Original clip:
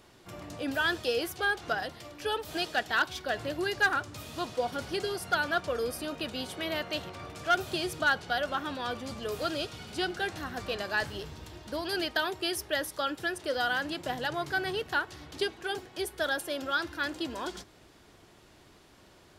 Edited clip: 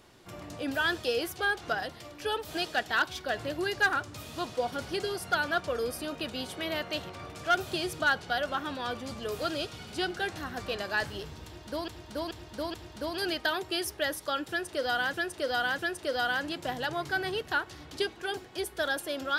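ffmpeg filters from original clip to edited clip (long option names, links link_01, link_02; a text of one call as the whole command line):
ffmpeg -i in.wav -filter_complex "[0:a]asplit=6[link_01][link_02][link_03][link_04][link_05][link_06];[link_01]atrim=end=11.882[link_07];[link_02]atrim=start=11.448:end=11.882[link_08];[link_03]atrim=start=11.448:end=11.882[link_09];[link_04]atrim=start=11.448:end=13.842[link_10];[link_05]atrim=start=13.188:end=13.842[link_11];[link_06]atrim=start=13.188[link_12];[link_07][link_08]acrossfade=duration=0.004:curve1=hsin:curve2=hsin[link_13];[link_13][link_09]acrossfade=duration=0.004:curve1=hsin:curve2=hsin[link_14];[link_14][link_10]acrossfade=duration=0.004:curve1=hsin:curve2=hsin[link_15];[link_15][link_11]acrossfade=duration=0.004:curve1=hsin:curve2=hsin[link_16];[link_16][link_12]acrossfade=duration=0.004:curve1=hsin:curve2=hsin" out.wav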